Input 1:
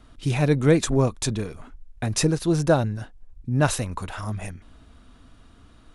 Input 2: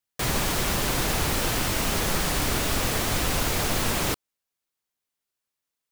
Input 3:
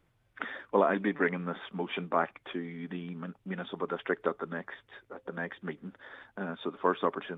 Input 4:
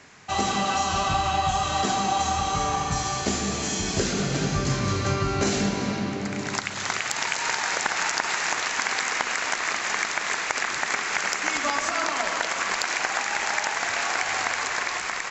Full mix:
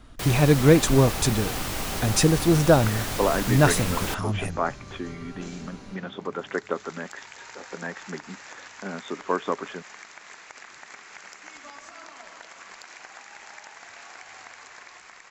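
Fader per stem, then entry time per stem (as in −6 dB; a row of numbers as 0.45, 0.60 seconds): +2.0, −5.0, +2.0, −18.5 decibels; 0.00, 0.00, 2.45, 0.00 seconds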